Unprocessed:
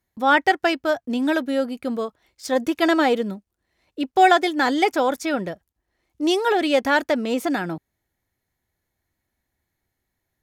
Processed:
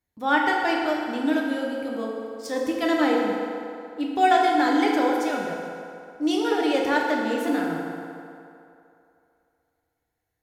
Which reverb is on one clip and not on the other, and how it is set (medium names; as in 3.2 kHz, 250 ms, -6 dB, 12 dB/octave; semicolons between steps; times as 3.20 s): FDN reverb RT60 2.7 s, low-frequency decay 0.75×, high-frequency decay 0.65×, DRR -2 dB; trim -7.5 dB